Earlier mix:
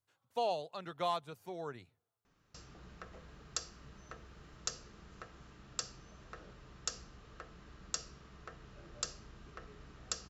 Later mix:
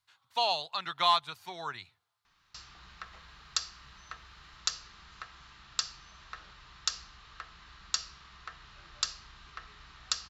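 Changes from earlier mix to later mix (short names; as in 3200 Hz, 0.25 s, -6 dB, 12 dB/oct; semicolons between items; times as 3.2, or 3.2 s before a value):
speech +4.5 dB; master: add graphic EQ 125/250/500/1000/2000/4000 Hz -4/-8/-11/+8/+5/+12 dB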